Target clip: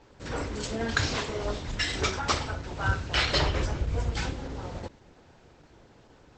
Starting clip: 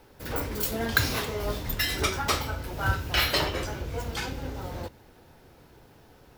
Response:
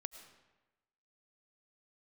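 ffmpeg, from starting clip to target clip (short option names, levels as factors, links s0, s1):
-filter_complex "[0:a]asplit=3[s0][s1][s2];[s0]afade=t=out:st=0.75:d=0.02[s3];[s1]bandreject=f=60:t=h:w=6,bandreject=f=120:t=h:w=6,bandreject=f=180:t=h:w=6,bandreject=f=240:t=h:w=6,afade=t=in:st=0.75:d=0.02,afade=t=out:st=2.26:d=0.02[s4];[s2]afade=t=in:st=2.26:d=0.02[s5];[s3][s4][s5]amix=inputs=3:normalize=0,asplit=3[s6][s7][s8];[s6]afade=t=out:st=3.28:d=0.02[s9];[s7]lowshelf=f=94:g=11,afade=t=in:st=3.28:d=0.02,afade=t=out:st=4.3:d=0.02[s10];[s8]afade=t=in:st=4.3:d=0.02[s11];[s9][s10][s11]amix=inputs=3:normalize=0" -ar 48000 -c:a libopus -b:a 12k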